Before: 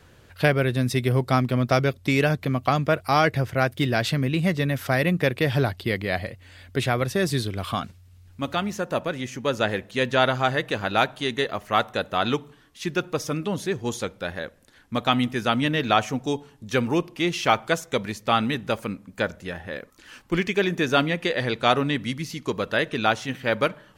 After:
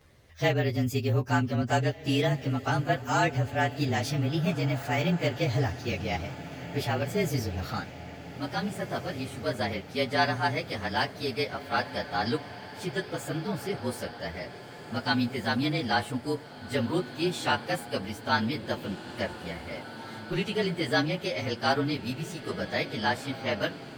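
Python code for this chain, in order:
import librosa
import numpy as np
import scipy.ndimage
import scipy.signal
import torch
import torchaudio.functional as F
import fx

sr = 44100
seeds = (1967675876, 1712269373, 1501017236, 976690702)

y = fx.partial_stretch(x, sr, pct=110)
y = fx.echo_diffused(y, sr, ms=1818, feedback_pct=60, wet_db=-13.5)
y = F.gain(torch.from_numpy(y), -3.0).numpy()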